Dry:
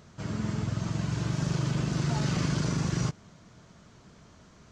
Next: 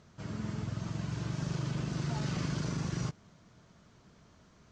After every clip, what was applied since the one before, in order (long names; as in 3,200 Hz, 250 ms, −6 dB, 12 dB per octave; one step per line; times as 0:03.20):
low-pass filter 7,900 Hz 12 dB per octave
level −6 dB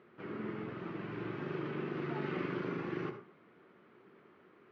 loudspeaker in its box 350–2,400 Hz, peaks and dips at 370 Hz +9 dB, 640 Hz −9 dB, 940 Hz −6 dB, 1,600 Hz −3 dB
convolution reverb RT60 0.35 s, pre-delay 58 ms, DRR 7.5 dB
level +4 dB